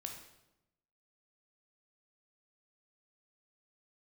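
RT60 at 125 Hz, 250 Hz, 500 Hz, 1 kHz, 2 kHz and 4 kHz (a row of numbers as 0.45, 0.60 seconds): 1.2, 1.1, 0.95, 0.85, 0.75, 0.75 seconds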